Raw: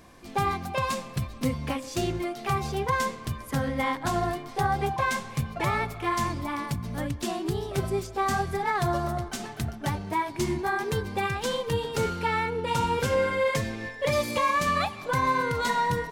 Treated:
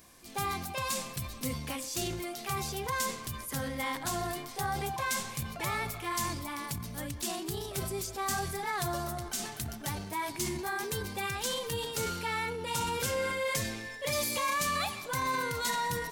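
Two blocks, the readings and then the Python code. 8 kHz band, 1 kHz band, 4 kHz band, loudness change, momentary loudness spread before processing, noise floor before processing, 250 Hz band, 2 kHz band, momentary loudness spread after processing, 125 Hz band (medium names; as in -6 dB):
+4.5 dB, -7.5 dB, -0.5 dB, -5.5 dB, 7 LU, -42 dBFS, -8.0 dB, -4.5 dB, 6 LU, -8.5 dB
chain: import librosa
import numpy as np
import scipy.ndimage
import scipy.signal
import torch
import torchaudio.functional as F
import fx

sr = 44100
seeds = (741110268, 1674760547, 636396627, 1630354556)

y = librosa.effects.preemphasis(x, coef=0.8, zi=[0.0])
y = fx.transient(y, sr, attack_db=-2, sustain_db=6)
y = y * 10.0 ** (5.0 / 20.0)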